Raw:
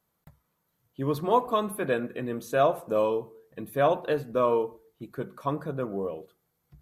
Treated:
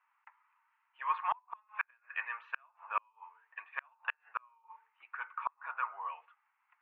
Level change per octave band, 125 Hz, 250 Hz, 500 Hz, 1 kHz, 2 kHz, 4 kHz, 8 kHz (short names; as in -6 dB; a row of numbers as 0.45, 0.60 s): under -40 dB, under -40 dB, -34.0 dB, -7.5 dB, -0.5 dB, -14.5 dB, n/a